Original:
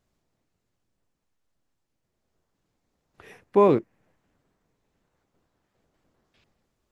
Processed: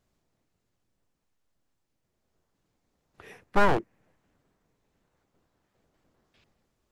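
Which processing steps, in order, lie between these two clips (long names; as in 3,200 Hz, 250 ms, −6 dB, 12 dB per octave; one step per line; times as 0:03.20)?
wavefolder on the positive side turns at −24 dBFS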